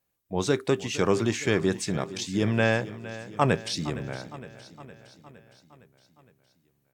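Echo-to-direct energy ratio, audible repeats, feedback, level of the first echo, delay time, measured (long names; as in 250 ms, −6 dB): −13.5 dB, 5, 60%, −15.5 dB, 462 ms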